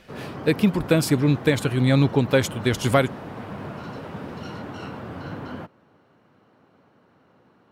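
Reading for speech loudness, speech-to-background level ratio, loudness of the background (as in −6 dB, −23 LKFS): −21.5 LKFS, 14.5 dB, −36.0 LKFS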